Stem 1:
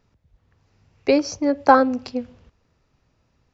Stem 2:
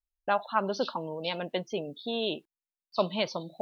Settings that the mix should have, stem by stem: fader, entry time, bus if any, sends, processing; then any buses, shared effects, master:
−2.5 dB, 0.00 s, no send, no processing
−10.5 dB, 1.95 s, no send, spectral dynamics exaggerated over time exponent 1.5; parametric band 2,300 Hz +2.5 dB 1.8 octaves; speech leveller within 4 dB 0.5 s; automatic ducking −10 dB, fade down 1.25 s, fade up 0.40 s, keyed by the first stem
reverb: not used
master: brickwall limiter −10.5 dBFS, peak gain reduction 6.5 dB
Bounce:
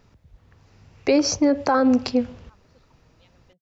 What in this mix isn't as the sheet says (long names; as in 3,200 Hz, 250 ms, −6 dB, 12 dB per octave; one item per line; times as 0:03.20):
stem 1 −2.5 dB → +8.0 dB
stem 2 −10.5 dB → −20.0 dB